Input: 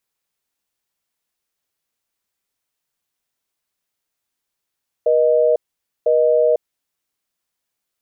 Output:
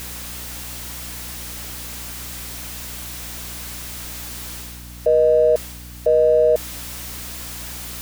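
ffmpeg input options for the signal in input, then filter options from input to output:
-f lavfi -i "aevalsrc='0.188*(sin(2*PI*480*t)+sin(2*PI*620*t))*clip(min(mod(t,1),0.5-mod(t,1))/0.005,0,1)':duration=1.72:sample_rate=44100"
-af "aeval=exprs='val(0)+0.5*0.0158*sgn(val(0))':channel_layout=same,areverse,acompressor=mode=upward:threshold=-27dB:ratio=2.5,areverse,aeval=exprs='val(0)+0.0141*(sin(2*PI*60*n/s)+sin(2*PI*2*60*n/s)/2+sin(2*PI*3*60*n/s)/3+sin(2*PI*4*60*n/s)/4+sin(2*PI*5*60*n/s)/5)':channel_layout=same"

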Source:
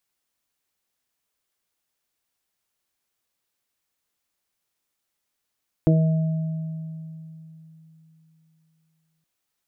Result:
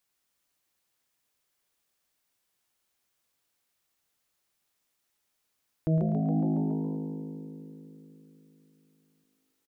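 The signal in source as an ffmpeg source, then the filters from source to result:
-f lavfi -i "aevalsrc='0.2*pow(10,-3*t/3.5)*sin(2*PI*160*t)+0.188*pow(10,-3*t/0.24)*sin(2*PI*320*t)+0.0596*pow(10,-3*t/0.65)*sin(2*PI*480*t)+0.0562*pow(10,-3*t/1.9)*sin(2*PI*640*t)':duration=3.37:sample_rate=44100"
-filter_complex "[0:a]asplit=2[link_01][link_02];[link_02]asplit=7[link_03][link_04][link_05][link_06][link_07][link_08][link_09];[link_03]adelay=139,afreqshift=52,volume=-6.5dB[link_10];[link_04]adelay=278,afreqshift=104,volume=-11.4dB[link_11];[link_05]adelay=417,afreqshift=156,volume=-16.3dB[link_12];[link_06]adelay=556,afreqshift=208,volume=-21.1dB[link_13];[link_07]adelay=695,afreqshift=260,volume=-26dB[link_14];[link_08]adelay=834,afreqshift=312,volume=-30.9dB[link_15];[link_09]adelay=973,afreqshift=364,volume=-35.8dB[link_16];[link_10][link_11][link_12][link_13][link_14][link_15][link_16]amix=inputs=7:normalize=0[link_17];[link_01][link_17]amix=inputs=2:normalize=0,alimiter=limit=-20dB:level=0:latency=1:release=136,asplit=2[link_18][link_19];[link_19]aecho=0:1:110|220|330|440|550:0.335|0.157|0.074|0.0348|0.0163[link_20];[link_18][link_20]amix=inputs=2:normalize=0"

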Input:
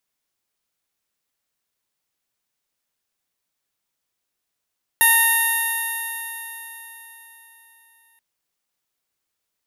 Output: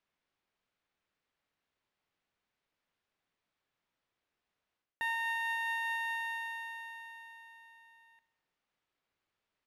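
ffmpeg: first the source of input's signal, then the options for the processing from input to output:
-f lavfi -i "aevalsrc='0.0891*pow(10,-3*t/4.16)*sin(2*PI*916.41*t)+0.158*pow(10,-3*t/4.16)*sin(2*PI*1835.26*t)+0.0596*pow(10,-3*t/4.16)*sin(2*PI*2758.98*t)+0.0501*pow(10,-3*t/4.16)*sin(2*PI*3690*t)+0.00891*pow(10,-3*t/4.16)*sin(2*PI*4630.67*t)+0.0119*pow(10,-3*t/4.16)*sin(2*PI*5583.35*t)+0.0168*pow(10,-3*t/4.16)*sin(2*PI*6550.32*t)+0.0158*pow(10,-3*t/4.16)*sin(2*PI*7533.81*t)+0.0112*pow(10,-3*t/4.16)*sin(2*PI*8535.98*t)+0.0708*pow(10,-3*t/4.16)*sin(2*PI*9558.93*t)+0.133*pow(10,-3*t/4.16)*sin(2*PI*10604.67*t)+0.141*pow(10,-3*t/4.16)*sin(2*PI*11675.14*t)+0.0398*pow(10,-3*t/4.16)*sin(2*PI*12772.18*t)+0.02*pow(10,-3*t/4.16)*sin(2*PI*13897.57*t)':duration=3.18:sample_rate=44100"
-af "lowpass=2900,areverse,acompressor=threshold=-31dB:ratio=16,areverse,aecho=1:1:69|138|207|276|345|414:0.2|0.112|0.0626|0.035|0.0196|0.011"

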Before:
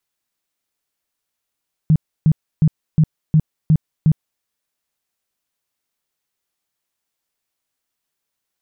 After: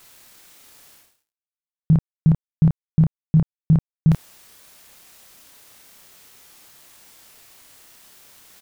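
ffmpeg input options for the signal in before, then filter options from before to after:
-f lavfi -i "aevalsrc='0.376*sin(2*PI*156*mod(t,0.36))*lt(mod(t,0.36),9/156)':duration=2.52:sample_rate=44100"
-filter_complex "[0:a]areverse,acompressor=mode=upward:threshold=-19dB:ratio=2.5,areverse,aeval=exprs='sgn(val(0))*max(abs(val(0))-0.00299,0)':channel_layout=same,asplit=2[link_01][link_02];[link_02]adelay=30,volume=-6dB[link_03];[link_01][link_03]amix=inputs=2:normalize=0"

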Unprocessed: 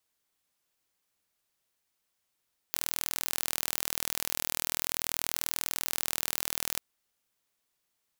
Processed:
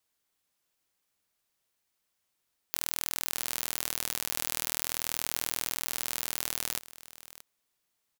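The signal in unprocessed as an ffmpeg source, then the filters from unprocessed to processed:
-f lavfi -i "aevalsrc='0.668*eq(mod(n,1092),0)':duration=4.04:sample_rate=44100"
-af "aecho=1:1:628:0.141"

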